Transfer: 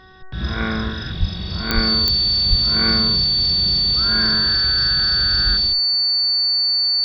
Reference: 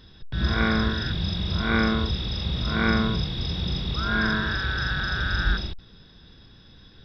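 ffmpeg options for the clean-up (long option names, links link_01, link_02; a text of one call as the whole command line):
ffmpeg -i in.wav -filter_complex "[0:a]adeclick=threshold=4,bandreject=frequency=375.2:width_type=h:width=4,bandreject=frequency=750.4:width_type=h:width=4,bandreject=frequency=1125.6:width_type=h:width=4,bandreject=frequency=1500.8:width_type=h:width=4,bandreject=frequency=1876:width_type=h:width=4,bandreject=frequency=4500:width=30,asplit=3[link_01][link_02][link_03];[link_01]afade=type=out:start_time=1.19:duration=0.02[link_04];[link_02]highpass=frequency=140:width=0.5412,highpass=frequency=140:width=1.3066,afade=type=in:start_time=1.19:duration=0.02,afade=type=out:start_time=1.31:duration=0.02[link_05];[link_03]afade=type=in:start_time=1.31:duration=0.02[link_06];[link_04][link_05][link_06]amix=inputs=3:normalize=0,asplit=3[link_07][link_08][link_09];[link_07]afade=type=out:start_time=1.74:duration=0.02[link_10];[link_08]highpass=frequency=140:width=0.5412,highpass=frequency=140:width=1.3066,afade=type=in:start_time=1.74:duration=0.02,afade=type=out:start_time=1.86:duration=0.02[link_11];[link_09]afade=type=in:start_time=1.86:duration=0.02[link_12];[link_10][link_11][link_12]amix=inputs=3:normalize=0,asplit=3[link_13][link_14][link_15];[link_13]afade=type=out:start_time=2.49:duration=0.02[link_16];[link_14]highpass=frequency=140:width=0.5412,highpass=frequency=140:width=1.3066,afade=type=in:start_time=2.49:duration=0.02,afade=type=out:start_time=2.61:duration=0.02[link_17];[link_15]afade=type=in:start_time=2.61:duration=0.02[link_18];[link_16][link_17][link_18]amix=inputs=3:normalize=0" out.wav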